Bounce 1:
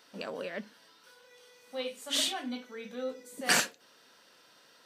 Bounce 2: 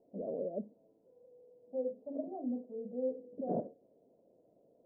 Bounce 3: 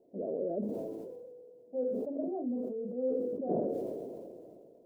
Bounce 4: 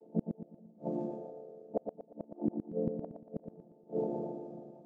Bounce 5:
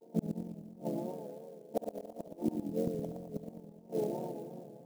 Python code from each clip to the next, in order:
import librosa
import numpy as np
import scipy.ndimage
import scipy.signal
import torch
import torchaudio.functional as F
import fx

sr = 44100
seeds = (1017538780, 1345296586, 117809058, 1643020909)

y1 = scipy.signal.sosfilt(scipy.signal.cheby1(5, 1.0, 670.0, 'lowpass', fs=sr, output='sos'), x)
y1 = y1 * librosa.db_to_amplitude(2.0)
y2 = fx.peak_eq(y1, sr, hz=370.0, db=8.0, octaves=0.51)
y2 = fx.sustainer(y2, sr, db_per_s=24.0)
y3 = fx.chord_vocoder(y2, sr, chord='minor triad', root=50)
y3 = fx.gate_flip(y3, sr, shuts_db=-28.0, range_db=-34)
y3 = fx.echo_feedback(y3, sr, ms=117, feedback_pct=39, wet_db=-6)
y3 = y3 * librosa.db_to_amplitude(8.5)
y4 = fx.echo_heads(y3, sr, ms=70, heads='first and third', feedback_pct=56, wet_db=-11)
y4 = fx.vibrato(y4, sr, rate_hz=2.9, depth_cents=74.0)
y4 = fx.clock_jitter(y4, sr, seeds[0], jitter_ms=0.023)